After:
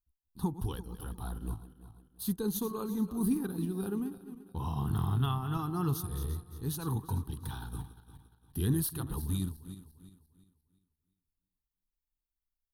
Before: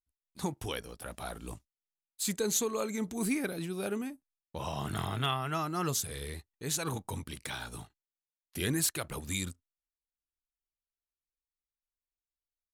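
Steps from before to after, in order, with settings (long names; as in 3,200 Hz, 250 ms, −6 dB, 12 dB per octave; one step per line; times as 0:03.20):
feedback delay that plays each chunk backwards 174 ms, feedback 58%, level −11.5 dB
low-shelf EQ 83 Hz +9.5 dB
phaser with its sweep stopped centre 2,200 Hz, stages 6
transient designer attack 0 dB, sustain −4 dB
flat-topped bell 2,800 Hz −12 dB 2.6 octaves
level +3.5 dB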